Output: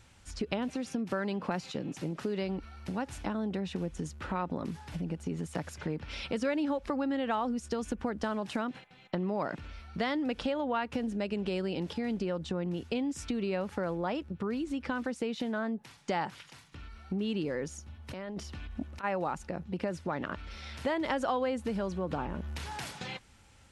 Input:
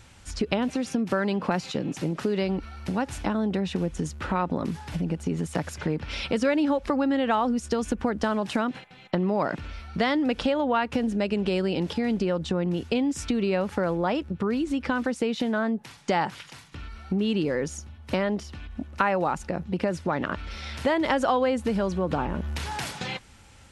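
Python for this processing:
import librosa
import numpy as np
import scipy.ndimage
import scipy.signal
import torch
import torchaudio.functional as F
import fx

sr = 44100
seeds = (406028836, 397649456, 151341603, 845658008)

y = fx.over_compress(x, sr, threshold_db=-31.0, ratio=-1.0, at=(17.86, 19.03), fade=0.02)
y = y * 10.0 ** (-7.5 / 20.0)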